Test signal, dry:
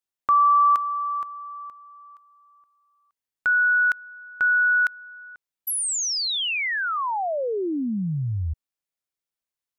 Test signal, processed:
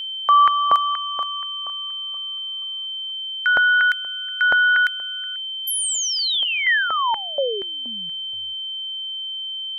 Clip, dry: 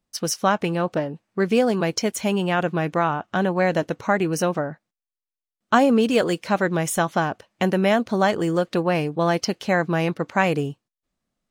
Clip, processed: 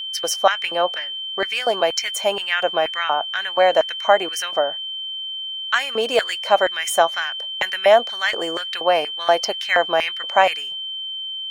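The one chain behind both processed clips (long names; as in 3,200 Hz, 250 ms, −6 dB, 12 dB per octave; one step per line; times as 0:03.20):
auto-filter high-pass square 2.1 Hz 640–1,900 Hz
steady tone 3,100 Hz −28 dBFS
level +1.5 dB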